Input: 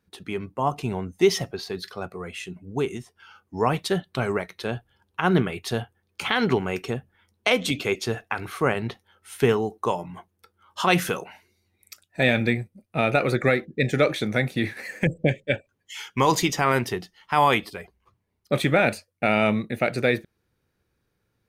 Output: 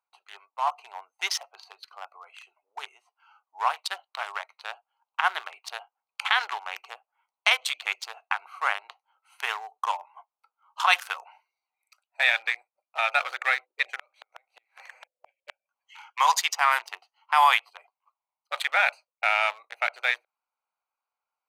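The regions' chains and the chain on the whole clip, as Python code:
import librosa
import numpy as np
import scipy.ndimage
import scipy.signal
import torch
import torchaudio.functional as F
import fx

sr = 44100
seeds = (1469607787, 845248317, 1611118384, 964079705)

y = fx.chain(x, sr, fx.gate_flip(shuts_db=-16.0, range_db=-32),
    fx.band_squash(depth_pct=70), at=(13.99, 16.13))
y = fx.wiener(y, sr, points=25)
y = scipy.signal.sosfilt(scipy.signal.butter(6, 810.0, 'highpass', fs=sr, output='sos'), y)
y = y * 10.0 ** (3.0 / 20.0)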